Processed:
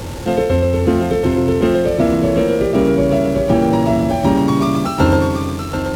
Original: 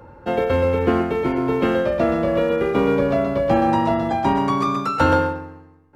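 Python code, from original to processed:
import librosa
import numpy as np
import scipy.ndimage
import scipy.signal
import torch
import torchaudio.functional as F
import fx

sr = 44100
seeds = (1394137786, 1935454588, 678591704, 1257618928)

y = x + 0.5 * 10.0 ** (-29.0 / 20.0) * np.sign(x)
y = fx.peak_eq(y, sr, hz=1300.0, db=-11.0, octaves=2.6)
y = fx.rider(y, sr, range_db=3, speed_s=0.5)
y = y + 10.0 ** (-6.5 / 20.0) * np.pad(y, (int(734 * sr / 1000.0), 0))[:len(y)]
y = np.interp(np.arange(len(y)), np.arange(len(y))[::2], y[::2])
y = F.gain(torch.from_numpy(y), 7.0).numpy()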